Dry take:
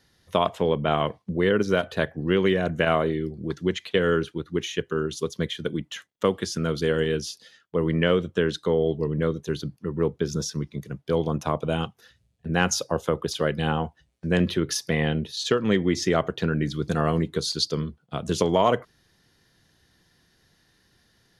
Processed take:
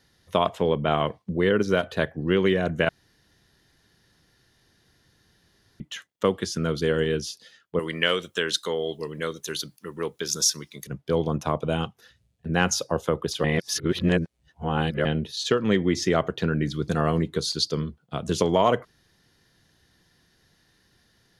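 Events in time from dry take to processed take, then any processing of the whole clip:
0:02.89–0:05.80: fill with room tone
0:07.79–0:10.87: spectral tilt +4.5 dB per octave
0:13.44–0:15.05: reverse

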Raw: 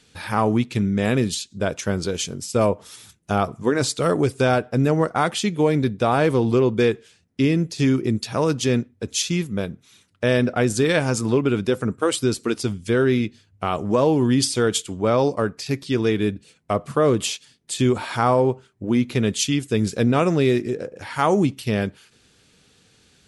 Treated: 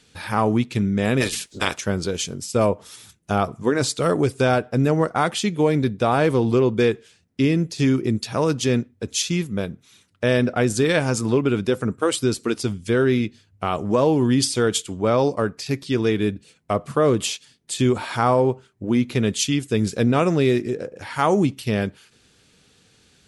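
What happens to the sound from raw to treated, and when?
0:01.20–0:01.77: ceiling on every frequency bin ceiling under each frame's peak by 26 dB

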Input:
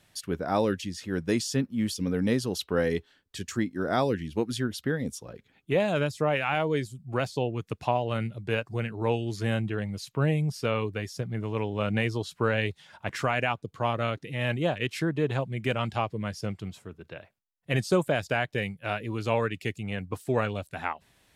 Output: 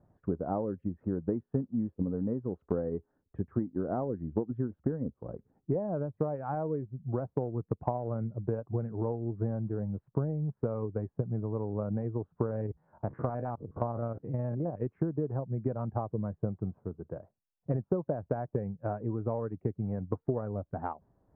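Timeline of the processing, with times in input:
0:12.46–0:14.77: spectrum averaged block by block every 50 ms
whole clip: Bessel low-pass filter 680 Hz, order 6; downward compressor 4 to 1, threshold −33 dBFS; transient designer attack +4 dB, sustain −3 dB; level +2.5 dB

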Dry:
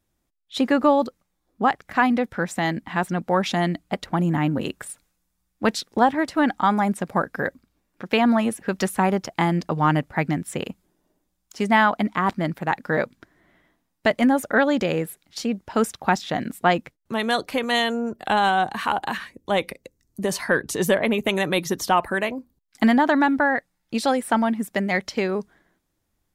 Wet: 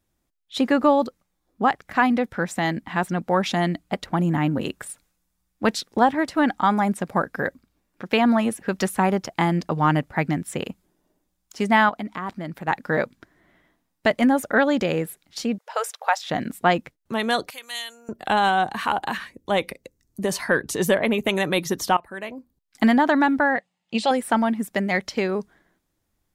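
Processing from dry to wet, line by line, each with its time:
0:11.89–0:12.68: downward compressor 2 to 1, threshold −33 dBFS
0:15.58–0:16.30: linear-phase brick-wall high-pass 450 Hz
0:17.50–0:18.09: first difference
0:21.97–0:22.83: fade in, from −20.5 dB
0:23.56–0:24.11: loudspeaker in its box 190–7,900 Hz, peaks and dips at 200 Hz +9 dB, 290 Hz −10 dB, 740 Hz +4 dB, 1,500 Hz −8 dB, 2,900 Hz +9 dB, 5,700 Hz −6 dB

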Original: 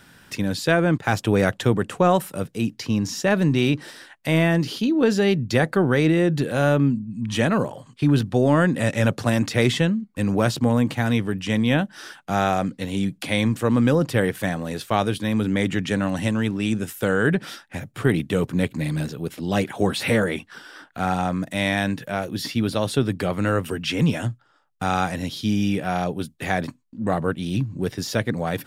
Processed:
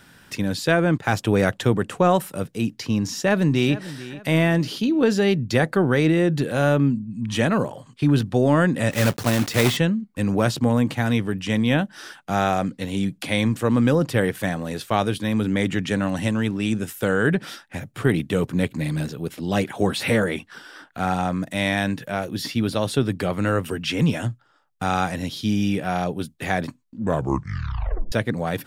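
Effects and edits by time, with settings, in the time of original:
0:03.11–0:03.75: delay throw 440 ms, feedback 35%, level −16 dB
0:08.91–0:09.79: one scale factor per block 3 bits
0:27.02: tape stop 1.10 s

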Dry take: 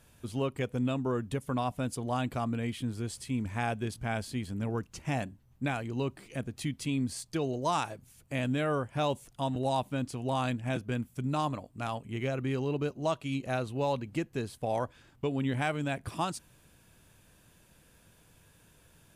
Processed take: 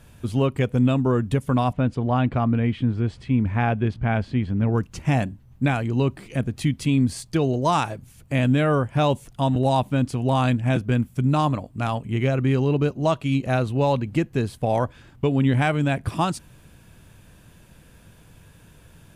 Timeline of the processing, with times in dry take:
0:01.73–0:04.73: low-pass filter 2,800 Hz
whole clip: bass and treble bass +5 dB, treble −4 dB; level +8.5 dB

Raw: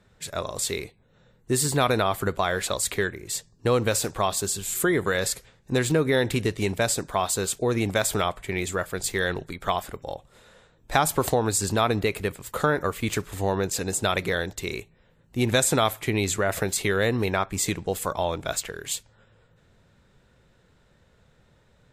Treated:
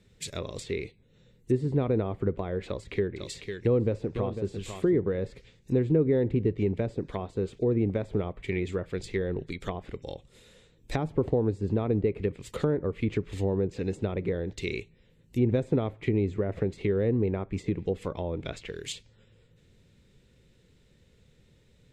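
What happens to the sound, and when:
0:02.66–0:04.97: single-tap delay 500 ms −9.5 dB
whole clip: treble cut that deepens with the level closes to 880 Hz, closed at −21.5 dBFS; flat-topped bell 1,000 Hz −11.5 dB

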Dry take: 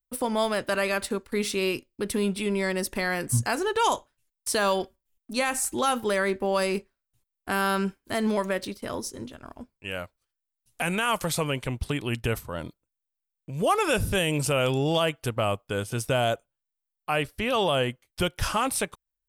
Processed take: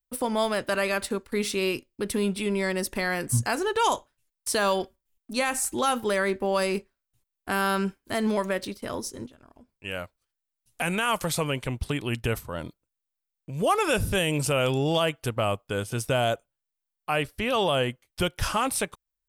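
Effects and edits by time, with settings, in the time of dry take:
0:09.26–0:09.75: downward compressor, threshold −49 dBFS

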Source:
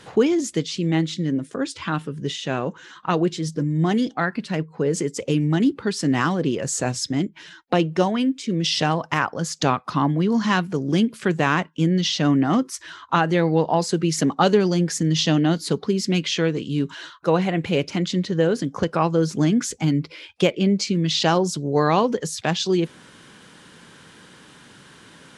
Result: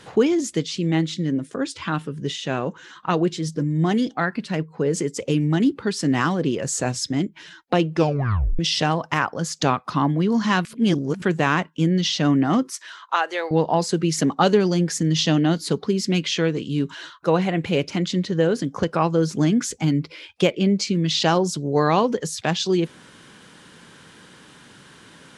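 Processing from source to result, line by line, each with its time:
0:07.94: tape stop 0.65 s
0:10.65–0:11.22: reverse
0:12.73–0:13.51: Bessel high-pass filter 650 Hz, order 6

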